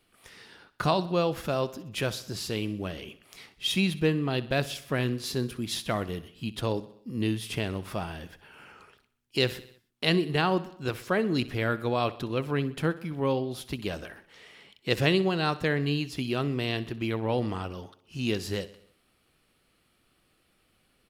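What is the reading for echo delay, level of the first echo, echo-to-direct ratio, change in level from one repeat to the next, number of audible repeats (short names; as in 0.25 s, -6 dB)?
63 ms, -17.5 dB, -16.0 dB, -5.0 dB, 4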